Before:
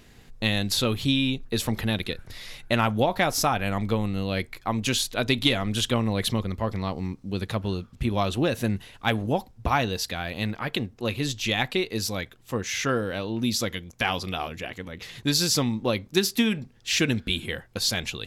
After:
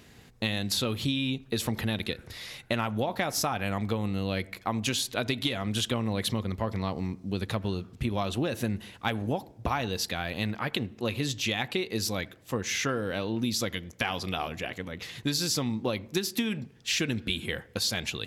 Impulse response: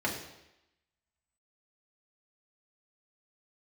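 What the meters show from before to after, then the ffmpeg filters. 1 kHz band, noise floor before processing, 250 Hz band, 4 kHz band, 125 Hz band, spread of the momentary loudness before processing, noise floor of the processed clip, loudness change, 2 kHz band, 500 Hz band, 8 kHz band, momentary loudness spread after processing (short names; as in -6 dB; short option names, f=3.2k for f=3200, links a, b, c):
-5.0 dB, -54 dBFS, -4.0 dB, -4.0 dB, -4.0 dB, 9 LU, -54 dBFS, -4.0 dB, -4.0 dB, -4.5 dB, -3.5 dB, 5 LU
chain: -filter_complex "[0:a]highpass=64,acompressor=threshold=-25dB:ratio=6,asplit=2[a][b];[1:a]atrim=start_sample=2205,lowpass=2.7k,adelay=78[c];[b][c]afir=irnorm=-1:irlink=0,volume=-30.5dB[d];[a][d]amix=inputs=2:normalize=0"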